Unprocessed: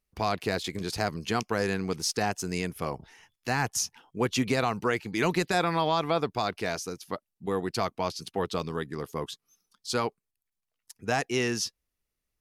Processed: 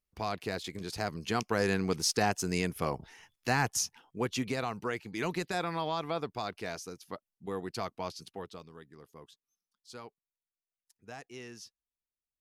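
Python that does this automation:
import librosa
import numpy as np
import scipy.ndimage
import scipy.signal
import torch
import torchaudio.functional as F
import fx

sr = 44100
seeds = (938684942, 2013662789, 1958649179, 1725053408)

y = fx.gain(x, sr, db=fx.line((0.88, -6.5), (1.74, 0.0), (3.48, 0.0), (4.56, -7.5), (8.19, -7.5), (8.67, -18.5)))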